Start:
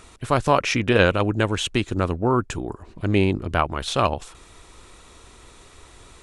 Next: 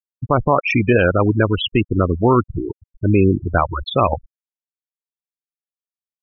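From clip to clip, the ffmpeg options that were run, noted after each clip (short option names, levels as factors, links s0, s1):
-af "afftfilt=real='re*gte(hypot(re,im),0.158)':imag='im*gte(hypot(re,im),0.158)':win_size=1024:overlap=0.75,alimiter=level_in=3.16:limit=0.891:release=50:level=0:latency=1,volume=0.708"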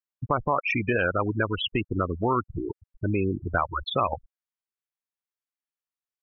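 -af "equalizer=f=1400:t=o:w=2.2:g=8.5,acompressor=threshold=0.1:ratio=2,volume=0.473"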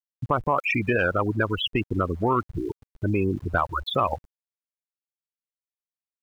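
-af "aeval=exprs='val(0)*gte(abs(val(0)),0.00355)':c=same,acontrast=81,volume=0.562"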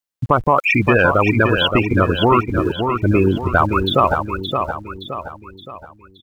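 -af "aecho=1:1:570|1140|1710|2280|2850:0.501|0.221|0.097|0.0427|0.0188,volume=2.66"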